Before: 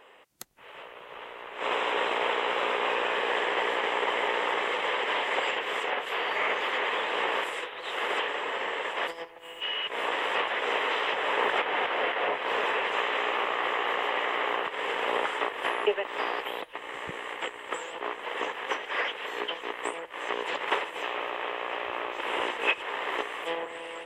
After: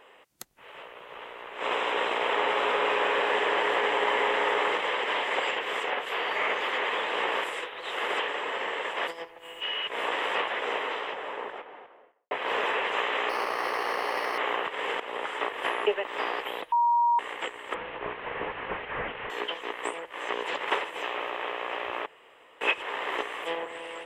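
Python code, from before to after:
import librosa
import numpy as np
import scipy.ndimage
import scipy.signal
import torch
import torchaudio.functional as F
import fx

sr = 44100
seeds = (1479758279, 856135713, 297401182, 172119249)

y = fx.echo_alternate(x, sr, ms=177, hz=2100.0, feedback_pct=59, wet_db=-2.0, at=(2.13, 4.78))
y = fx.highpass(y, sr, hz=72.0, slope=12, at=(8.12, 9.27))
y = fx.studio_fade_out(y, sr, start_s=10.24, length_s=2.07)
y = fx.resample_linear(y, sr, factor=6, at=(13.29, 14.38))
y = fx.delta_mod(y, sr, bps=16000, step_db=-36.5, at=(17.74, 19.3))
y = fx.edit(y, sr, fx.fade_in_from(start_s=15.0, length_s=0.5, floor_db=-12.5),
    fx.bleep(start_s=16.72, length_s=0.47, hz=948.0, db=-19.5),
    fx.room_tone_fill(start_s=22.06, length_s=0.55), tone=tone)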